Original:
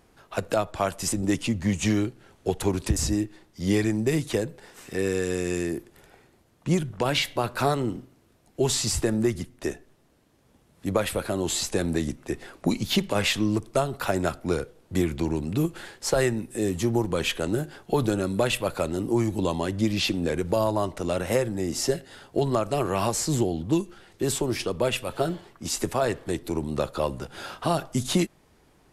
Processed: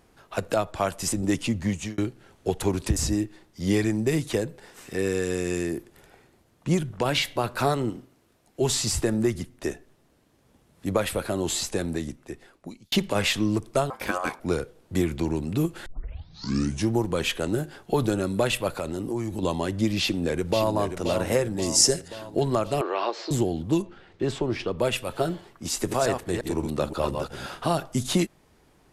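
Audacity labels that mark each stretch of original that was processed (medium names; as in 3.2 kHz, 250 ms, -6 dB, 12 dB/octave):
1.510000	1.980000	fade out equal-power
7.900000	8.620000	bass shelf 250 Hz -6 dB
11.480000	12.920000	fade out
13.900000	14.400000	ring modulator 910 Hz
15.860000	15.860000	tape start 1.07 s
18.760000	19.430000	compression 3:1, threshold -26 dBFS
19.990000	20.750000	echo throw 530 ms, feedback 60%, level -8 dB
21.620000	22.080000	high-order bell 7.1 kHz +12 dB 1.3 oct
22.810000	23.310000	elliptic band-pass 340–4300 Hz
23.820000	24.790000	low-pass 3.5 kHz
25.710000	27.720000	chunks repeated in reverse 175 ms, level -5 dB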